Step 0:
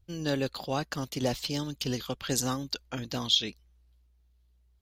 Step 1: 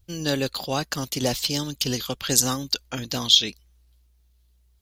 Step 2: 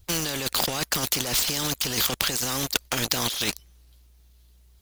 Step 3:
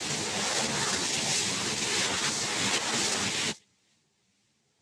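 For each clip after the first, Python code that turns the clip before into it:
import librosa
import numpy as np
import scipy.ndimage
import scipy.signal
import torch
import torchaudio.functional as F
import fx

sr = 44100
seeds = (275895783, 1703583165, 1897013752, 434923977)

y1 = fx.high_shelf(x, sr, hz=3700.0, db=9.5)
y1 = y1 * librosa.db_to_amplitude(4.0)
y2 = fx.leveller(y1, sr, passes=3)
y2 = fx.over_compress(y2, sr, threshold_db=-21.0, ratio=-1.0)
y2 = fx.spectral_comp(y2, sr, ratio=2.0)
y2 = y2 * librosa.db_to_amplitude(-1.0)
y3 = fx.spec_swells(y2, sr, rise_s=1.62)
y3 = fx.noise_vocoder(y3, sr, seeds[0], bands=6)
y3 = fx.ensemble(y3, sr)
y3 = y3 * librosa.db_to_amplitude(-3.0)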